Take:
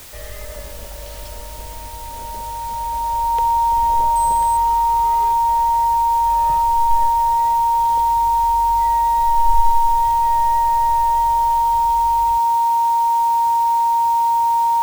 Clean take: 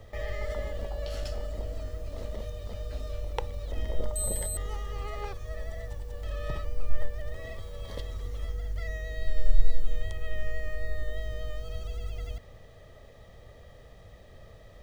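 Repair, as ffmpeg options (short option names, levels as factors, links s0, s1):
-af "bandreject=f=930:w=30,afwtdn=0.011"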